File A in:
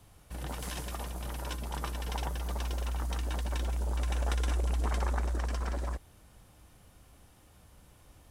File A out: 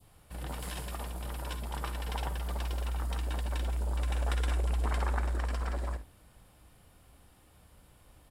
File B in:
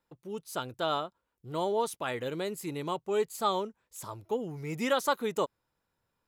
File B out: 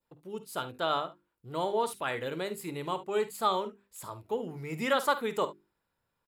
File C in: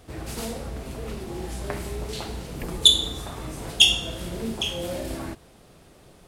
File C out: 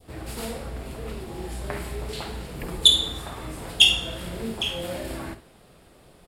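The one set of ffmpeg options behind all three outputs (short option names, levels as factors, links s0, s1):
-filter_complex "[0:a]equalizer=f=6100:w=5.4:g=-9,bandreject=f=50:t=h:w=6,bandreject=f=100:t=h:w=6,bandreject=f=150:t=h:w=6,bandreject=f=200:t=h:w=6,bandreject=f=250:t=h:w=6,bandreject=f=300:t=h:w=6,bandreject=f=350:t=h:w=6,bandreject=f=400:t=h:w=6,asplit=2[s0][s1];[s1]aecho=0:1:51|71:0.2|0.133[s2];[s0][s2]amix=inputs=2:normalize=0,adynamicequalizer=threshold=0.01:dfrequency=1700:dqfactor=0.84:tfrequency=1700:tqfactor=0.84:attack=5:release=100:ratio=0.375:range=2:mode=boostabove:tftype=bell,volume=0.891"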